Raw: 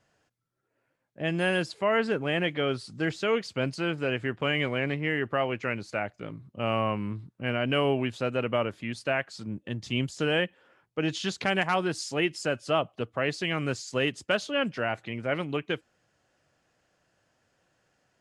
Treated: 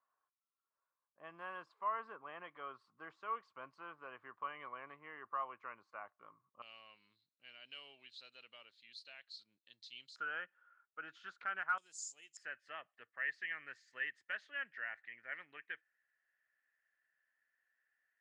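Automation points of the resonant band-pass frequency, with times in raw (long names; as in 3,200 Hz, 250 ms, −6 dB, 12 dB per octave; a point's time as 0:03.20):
resonant band-pass, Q 11
1,100 Hz
from 0:06.62 4,100 Hz
from 0:10.16 1,400 Hz
from 0:11.78 7,100 Hz
from 0:12.37 1,800 Hz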